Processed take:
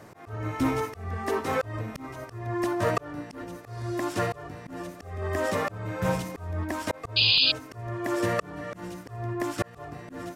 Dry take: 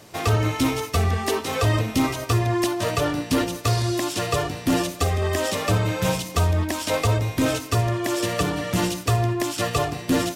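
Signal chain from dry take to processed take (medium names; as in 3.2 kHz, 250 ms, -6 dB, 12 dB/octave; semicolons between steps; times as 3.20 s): resonant high shelf 2.3 kHz -8.5 dB, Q 1.5; slow attack 599 ms; painted sound noise, 7.16–7.52 s, 2.4–5 kHz -21 dBFS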